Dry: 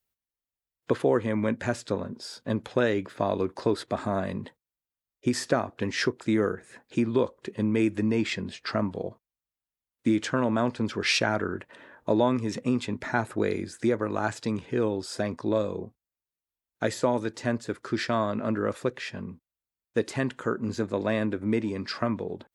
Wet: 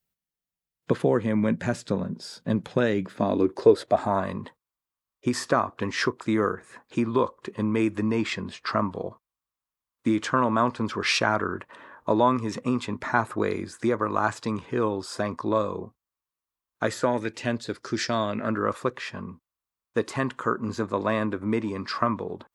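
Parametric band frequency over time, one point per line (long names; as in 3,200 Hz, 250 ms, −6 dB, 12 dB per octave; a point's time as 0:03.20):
parametric band +12 dB 0.53 octaves
0:03.05 170 Hz
0:04.25 1,100 Hz
0:16.84 1,100 Hz
0:18.00 6,800 Hz
0:18.59 1,100 Hz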